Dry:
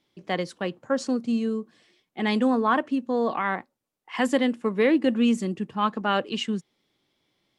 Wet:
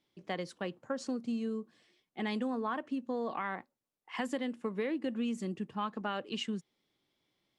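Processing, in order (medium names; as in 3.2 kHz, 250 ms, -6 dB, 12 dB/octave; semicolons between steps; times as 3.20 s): compression, threshold -24 dBFS, peak gain reduction 8 dB; trim -7 dB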